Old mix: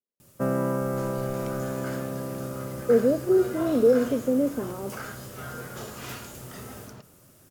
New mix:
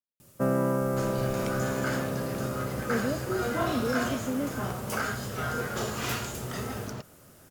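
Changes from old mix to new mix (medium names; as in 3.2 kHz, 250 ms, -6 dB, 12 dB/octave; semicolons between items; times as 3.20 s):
speech: add peaking EQ 440 Hz -13 dB 1.2 oct; second sound +11.5 dB; reverb: off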